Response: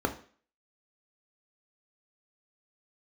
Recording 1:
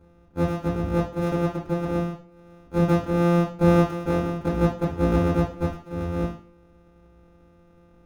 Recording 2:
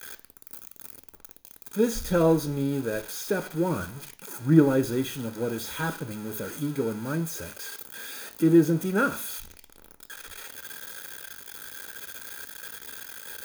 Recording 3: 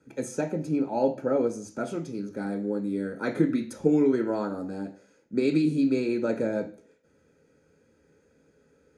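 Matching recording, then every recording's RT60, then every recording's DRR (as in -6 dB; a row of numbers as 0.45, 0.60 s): 3; 0.45, 0.45, 0.45 s; -3.0, 9.5, 4.0 dB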